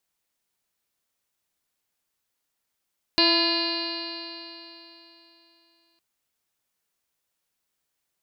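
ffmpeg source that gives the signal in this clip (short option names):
-f lavfi -i "aevalsrc='0.0708*pow(10,-3*t/3.31)*sin(2*PI*333.37*t)+0.0376*pow(10,-3*t/3.31)*sin(2*PI*668.92*t)+0.0422*pow(10,-3*t/3.31)*sin(2*PI*1008.84*t)+0.00891*pow(10,-3*t/3.31)*sin(2*PI*1355.24*t)+0.0299*pow(10,-3*t/3.31)*sin(2*PI*1710.17*t)+0.0158*pow(10,-3*t/3.31)*sin(2*PI*2075.61*t)+0.0355*pow(10,-3*t/3.31)*sin(2*PI*2453.43*t)+0.0501*pow(10,-3*t/3.31)*sin(2*PI*2845.37*t)+0.0126*pow(10,-3*t/3.31)*sin(2*PI*3253.09*t)+0.0237*pow(10,-3*t/3.31)*sin(2*PI*3678.11*t)+0.1*pow(10,-3*t/3.31)*sin(2*PI*4121.81*t)+0.0794*pow(10,-3*t/3.31)*sin(2*PI*4585.49*t)+0.0178*pow(10,-3*t/3.31)*sin(2*PI*5070.29*t)':d=2.81:s=44100"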